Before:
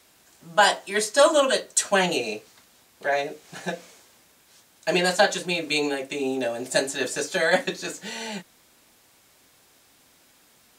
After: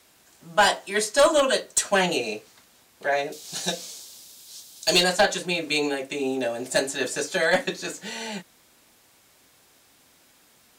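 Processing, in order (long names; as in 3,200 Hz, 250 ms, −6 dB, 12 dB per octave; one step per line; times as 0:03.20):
0:03.32–0:05.04: high shelf with overshoot 2,900 Hz +12 dB, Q 1.5
asymmetric clip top −13.5 dBFS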